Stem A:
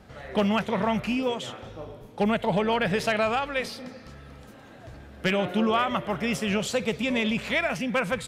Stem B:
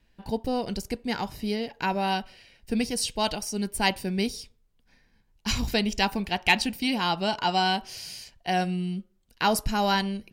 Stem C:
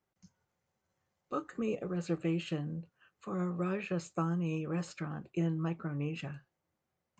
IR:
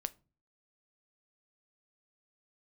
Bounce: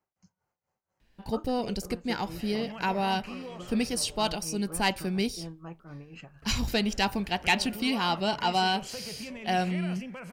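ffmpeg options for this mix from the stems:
-filter_complex "[0:a]alimiter=limit=0.0841:level=0:latency=1:release=20,adelay=2200,volume=0.447,asplit=3[s0][s1][s2];[s0]atrim=end=4.27,asetpts=PTS-STARTPTS,afade=t=out:st=4.266:d=0.004:c=hsin[s3];[s1]atrim=start=4.27:end=6.42,asetpts=PTS-STARTPTS,volume=0[s4];[s2]atrim=start=6.42,asetpts=PTS-STARTPTS,afade=t=in:d=0.004:c=hsin[s5];[s3][s4][s5]concat=n=3:v=0:a=1,asplit=2[s6][s7];[s7]volume=0.211[s8];[1:a]asoftclip=type=tanh:threshold=0.237,adelay=1000,volume=0.891[s9];[2:a]equalizer=f=850:w=0.93:g=7,tremolo=f=4.2:d=0.81,volume=0.631,asplit=2[s10][s11];[s11]volume=0.266[s12];[s6][s10]amix=inputs=2:normalize=0,asuperstop=centerf=3600:order=4:qfactor=6,acompressor=threshold=0.00562:ratio=2.5,volume=1[s13];[3:a]atrim=start_sample=2205[s14];[s8][s12]amix=inputs=2:normalize=0[s15];[s15][s14]afir=irnorm=-1:irlink=0[s16];[s9][s13][s16]amix=inputs=3:normalize=0"

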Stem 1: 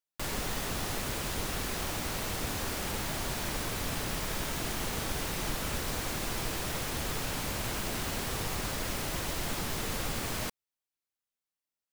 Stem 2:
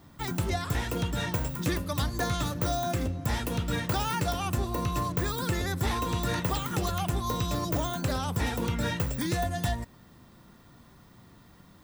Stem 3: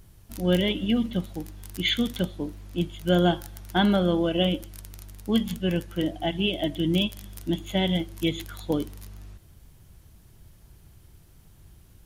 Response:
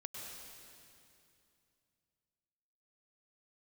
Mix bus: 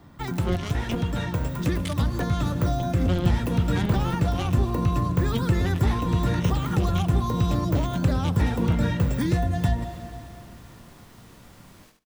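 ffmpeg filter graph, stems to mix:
-filter_complex "[0:a]flanger=delay=16.5:depth=5:speed=0.9,adelay=1400,volume=0.141,asplit=2[s0][s1];[s1]volume=0.447[s2];[1:a]dynaudnorm=f=390:g=11:m=1.68,highshelf=f=4000:g=-9.5,volume=1.33,asplit=2[s3][s4];[s4]volume=0.422[s5];[2:a]acrusher=bits=2:mix=0:aa=0.5,volume=0.794[s6];[3:a]atrim=start_sample=2205[s7];[s5][s7]afir=irnorm=-1:irlink=0[s8];[s2]aecho=0:1:73|146|219:1|0.16|0.0256[s9];[s0][s3][s6][s8][s9]amix=inputs=5:normalize=0,acrossover=split=290[s10][s11];[s11]acompressor=threshold=0.0282:ratio=4[s12];[s10][s12]amix=inputs=2:normalize=0"

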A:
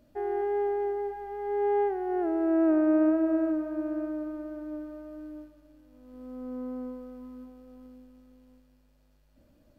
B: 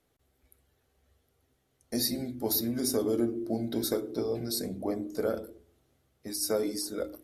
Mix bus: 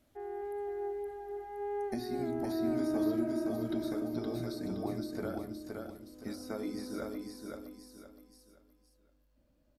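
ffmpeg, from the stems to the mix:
-filter_complex "[0:a]volume=0.299,asplit=2[s0][s1];[s1]volume=0.562[s2];[1:a]equalizer=f=480:w=4.6:g=-14,acompressor=threshold=0.0178:ratio=6,volume=1.12,asplit=2[s3][s4];[s4]volume=0.631[s5];[s2][s5]amix=inputs=2:normalize=0,aecho=0:1:518|1036|1554|2072:1|0.31|0.0961|0.0298[s6];[s0][s3][s6]amix=inputs=3:normalize=0,acrossover=split=3200[s7][s8];[s8]acompressor=threshold=0.00158:ratio=4:attack=1:release=60[s9];[s7][s9]amix=inputs=2:normalize=0"

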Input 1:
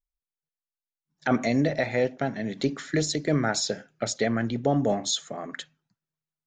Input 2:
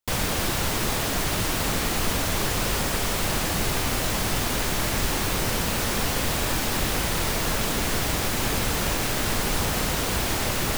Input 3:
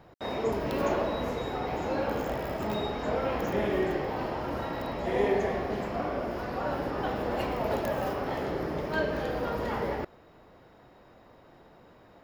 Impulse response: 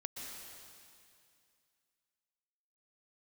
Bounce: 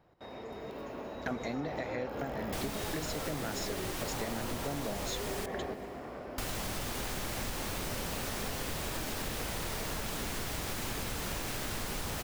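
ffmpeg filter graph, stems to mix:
-filter_complex "[0:a]volume=0.531,asplit=2[s0][s1];[1:a]adelay=2450,volume=0.422,asplit=3[s2][s3][s4];[s2]atrim=end=5.46,asetpts=PTS-STARTPTS,afade=t=out:st=5.456:d=0.004:c=hsin[s5];[s3]atrim=start=5.46:end=6.38,asetpts=PTS-STARTPTS,volume=0[s6];[s4]atrim=start=6.38,asetpts=PTS-STARTPTS,afade=t=in:d=0.004:c=hsin[s7];[s5][s6][s7]concat=n=3:v=0:a=1,asplit=2[s8][s9];[s9]volume=0.141[s10];[2:a]alimiter=level_in=1.12:limit=0.0631:level=0:latency=1:release=130,volume=0.891,volume=0.794,asplit=2[s11][s12];[s12]volume=0.531[s13];[s1]apad=whole_len=539502[s14];[s11][s14]sidechaingate=range=0.0224:threshold=0.00178:ratio=16:detection=peak[s15];[3:a]atrim=start_sample=2205[s16];[s10][s13]amix=inputs=2:normalize=0[s17];[s17][s16]afir=irnorm=-1:irlink=0[s18];[s0][s8][s15][s18]amix=inputs=4:normalize=0,acompressor=threshold=0.0224:ratio=6"

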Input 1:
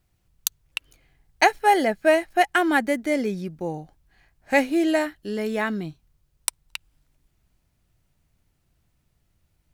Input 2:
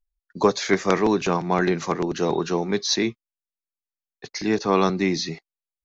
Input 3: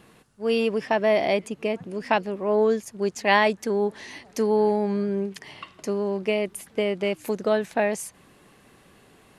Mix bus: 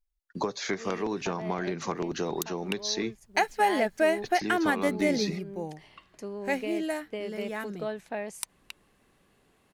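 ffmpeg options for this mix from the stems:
-filter_complex "[0:a]adelay=1950,volume=0.708,afade=t=out:st=5.14:d=0.76:silence=0.446684[s0];[1:a]acompressor=threshold=0.0501:ratio=10,volume=0.891,asplit=2[s1][s2];[2:a]adelay=350,volume=0.266[s3];[s2]apad=whole_len=429273[s4];[s3][s4]sidechaincompress=threshold=0.02:ratio=8:attack=35:release=1130[s5];[s0][s1][s5]amix=inputs=3:normalize=0,alimiter=limit=0.211:level=0:latency=1:release=210"

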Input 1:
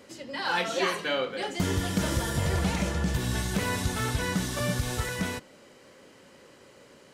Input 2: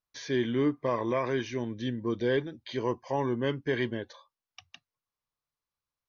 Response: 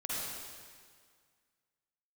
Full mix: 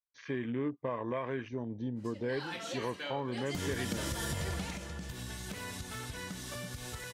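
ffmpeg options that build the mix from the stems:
-filter_complex "[0:a]acompressor=threshold=0.0398:ratio=6,adynamicequalizer=threshold=0.00631:dfrequency=1600:dqfactor=0.7:tfrequency=1600:tqfactor=0.7:attack=5:release=100:ratio=0.375:range=2:mode=boostabove:tftype=highshelf,adelay=1950,afade=t=in:st=3.34:d=0.3:silence=0.375837,afade=t=out:st=4.53:d=0.25:silence=0.298538[s0];[1:a]afwtdn=0.00891,equalizer=f=360:w=7.7:g=-6,volume=0.944[s1];[s0][s1]amix=inputs=2:normalize=0,acompressor=threshold=0.02:ratio=2.5"

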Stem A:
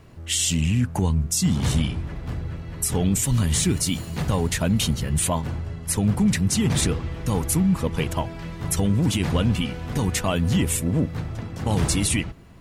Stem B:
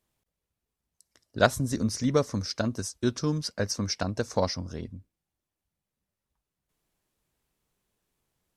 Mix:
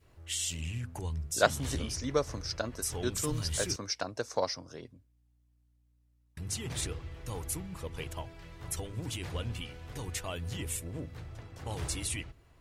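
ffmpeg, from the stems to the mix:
-filter_complex "[0:a]bandreject=f=50:t=h:w=6,bandreject=f=100:t=h:w=6,bandreject=f=150:t=h:w=6,bandreject=f=200:t=h:w=6,bandreject=f=250:t=h:w=6,adynamicequalizer=threshold=0.00794:dfrequency=930:dqfactor=0.83:tfrequency=930:tqfactor=0.83:attack=5:release=100:ratio=0.375:range=2:mode=cutabove:tftype=bell,volume=0.282,asplit=3[s0][s1][s2];[s0]atrim=end=3.76,asetpts=PTS-STARTPTS,afade=t=out:st=3.756:d=0.004:c=hsin[s3];[s1]atrim=start=3.76:end=6.37,asetpts=PTS-STARTPTS,volume=0[s4];[s2]atrim=start=6.37,asetpts=PTS-STARTPTS,afade=t=in:d=0.004:c=hsin[s5];[s3][s4][s5]concat=n=3:v=0:a=1[s6];[1:a]highpass=f=130:w=0.5412,highpass=f=130:w=1.3066,volume=0.708[s7];[s6][s7]amix=inputs=2:normalize=0,aeval=exprs='val(0)+0.000501*(sin(2*PI*60*n/s)+sin(2*PI*2*60*n/s)/2+sin(2*PI*3*60*n/s)/3+sin(2*PI*4*60*n/s)/4+sin(2*PI*5*60*n/s)/5)':c=same,equalizer=f=200:w=1.7:g=-13.5"

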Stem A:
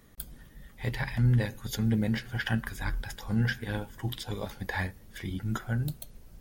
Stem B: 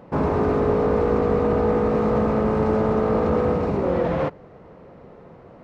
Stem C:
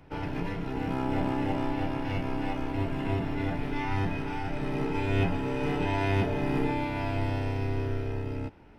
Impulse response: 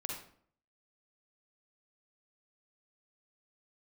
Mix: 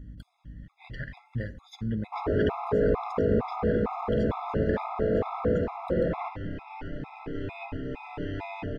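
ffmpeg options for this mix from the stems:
-filter_complex "[0:a]aeval=exprs='val(0)+0.00891*(sin(2*PI*60*n/s)+sin(2*PI*2*60*n/s)/2+sin(2*PI*3*60*n/s)/3+sin(2*PI*4*60*n/s)/4+sin(2*PI*5*60*n/s)/5)':c=same,volume=0.562,asplit=3[s0][s1][s2];[s1]volume=0.178[s3];[1:a]adelay=2000,volume=0.447,asplit=2[s4][s5];[s5]volume=0.562[s6];[2:a]adelay=2400,volume=0.562,asplit=2[s7][s8];[s8]volume=0.211[s9];[s2]apad=whole_len=497692[s10];[s7][s10]sidechaincompress=threshold=0.00355:ratio=8:attack=16:release=140[s11];[3:a]atrim=start_sample=2205[s12];[s3][s6][s9]amix=inputs=3:normalize=0[s13];[s13][s12]afir=irnorm=-1:irlink=0[s14];[s0][s4][s11][s14]amix=inputs=4:normalize=0,aeval=exprs='val(0)+0.00631*(sin(2*PI*50*n/s)+sin(2*PI*2*50*n/s)/2+sin(2*PI*3*50*n/s)/3+sin(2*PI*4*50*n/s)/4+sin(2*PI*5*50*n/s)/5)':c=same,lowpass=3600,afftfilt=real='re*gt(sin(2*PI*2.2*pts/sr)*(1-2*mod(floor(b*sr/1024/680),2)),0)':imag='im*gt(sin(2*PI*2.2*pts/sr)*(1-2*mod(floor(b*sr/1024/680),2)),0)':win_size=1024:overlap=0.75"

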